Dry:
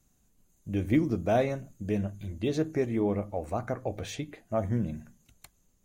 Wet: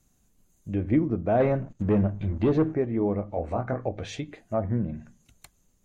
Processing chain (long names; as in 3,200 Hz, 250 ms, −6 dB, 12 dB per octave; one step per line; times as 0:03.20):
0:01.40–0:02.74: leveller curve on the samples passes 2
0:03.30–0:03.89: double-tracking delay 24 ms −2.5 dB
treble cut that deepens with the level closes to 1,600 Hz, closed at −26 dBFS
level +2 dB